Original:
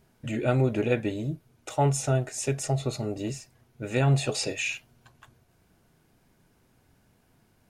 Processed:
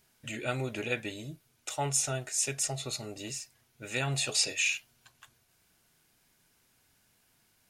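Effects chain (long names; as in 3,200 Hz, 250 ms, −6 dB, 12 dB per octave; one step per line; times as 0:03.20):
tilt shelving filter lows −8.5 dB, about 1,300 Hz
level −3.5 dB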